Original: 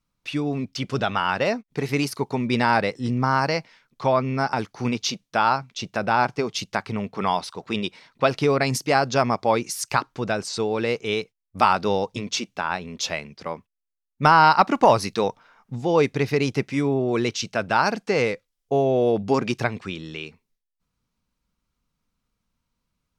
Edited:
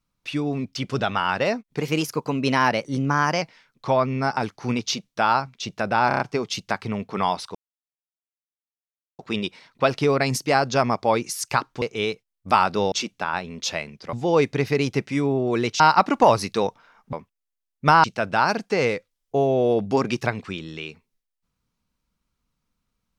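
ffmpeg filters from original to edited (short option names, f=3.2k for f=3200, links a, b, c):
-filter_complex "[0:a]asplit=14[a][b][c][d][e][f][g][h][i][j][k][l][m][n];[a]atrim=end=1.804[o];[b]atrim=start=1.8:end=3.58,asetpts=PTS-STARTPTS,asetrate=48510,aresample=44100[p];[c]atrim=start=3.576:end=6.272[q];[d]atrim=start=6.238:end=6.272[r];[e]atrim=start=6.238:end=6.272[s];[f]atrim=start=6.238:end=6.272[t];[g]atrim=start=6.238:end=7.59,asetpts=PTS-STARTPTS,afade=t=out:st=1.348:d=0.004:c=hsin,apad=pad_dur=1.64[u];[h]atrim=start=7.59:end=10.222,asetpts=PTS-STARTPTS,afade=t=in:d=0.004:c=hsin[v];[i]atrim=start=10.908:end=12.012[w];[j]atrim=start=12.288:end=13.502[x];[k]atrim=start=15.738:end=17.412[y];[l]atrim=start=14.408:end=15.742[z];[m]atrim=start=13.498:end=14.412[aa];[n]atrim=start=17.408[ab];[o][p]acrossfade=d=0.004:c1=hsin:c2=hsin[ac];[ac][q]acrossfade=d=0.004:c1=hsin:c2=hsin[ad];[ad][r]acrossfade=d=0.004:c1=hsin:c2=hsin[ae];[ae][s]acrossfade=d=0.004:c1=hsin:c2=hsin[af];[af][t]acrossfade=d=0.004:c1=hsin:c2=hsin[ag];[u][v]concat=n=2:v=0:a=1[ah];[ag][ah]acrossfade=d=0.004:c1=hsin:c2=hsin[ai];[ai][w]acrossfade=d=0.004:c1=hsin:c2=hsin[aj];[aj][x]acrossfade=d=0.004:c1=hsin:c2=hsin[ak];[ak][y]acrossfade=d=0.004:c1=hsin:c2=hsin[al];[al][z]acrossfade=d=0.004:c1=hsin:c2=hsin[am];[am][aa]acrossfade=d=0.004:c1=hsin:c2=hsin[an];[an][ab]acrossfade=d=0.004:c1=hsin:c2=hsin"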